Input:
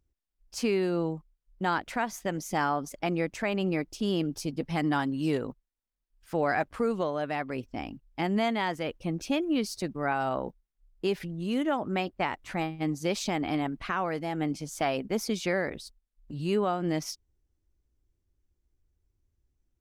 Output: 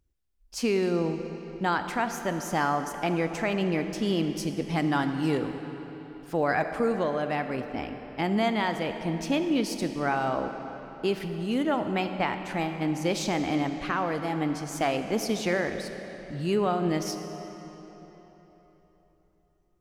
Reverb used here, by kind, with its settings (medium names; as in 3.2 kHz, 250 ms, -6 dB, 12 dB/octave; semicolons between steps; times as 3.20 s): algorithmic reverb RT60 3.9 s, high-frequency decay 0.8×, pre-delay 0 ms, DRR 7 dB; trim +1.5 dB